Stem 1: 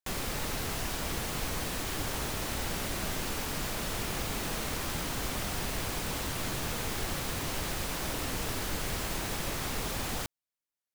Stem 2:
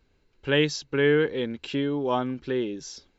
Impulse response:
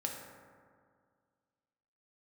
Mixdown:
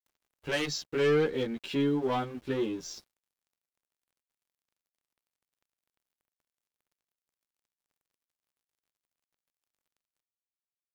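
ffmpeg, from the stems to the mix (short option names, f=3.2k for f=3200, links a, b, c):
-filter_complex "[0:a]highpass=f=400:p=1,acrossover=split=1200|3400[a][b][c];[a]acompressor=threshold=-43dB:ratio=4[d];[b]acompressor=threshold=-54dB:ratio=4[e];[c]acompressor=threshold=-51dB:ratio=4[f];[d][e][f]amix=inputs=3:normalize=0,volume=-17.5dB,asplit=2[g][h];[h]volume=-19dB[i];[1:a]asoftclip=type=tanh:threshold=-22dB,asplit=2[j][k];[k]adelay=11.5,afreqshift=2.7[l];[j][l]amix=inputs=2:normalize=1,volume=2.5dB,asplit=2[m][n];[n]apad=whole_len=482467[o];[g][o]sidechaincompress=threshold=-38dB:ratio=8:attack=9.3:release=267[p];[2:a]atrim=start_sample=2205[q];[i][q]afir=irnorm=-1:irlink=0[r];[p][m][r]amix=inputs=3:normalize=0,aeval=exprs='sgn(val(0))*max(abs(val(0))-0.00251,0)':c=same"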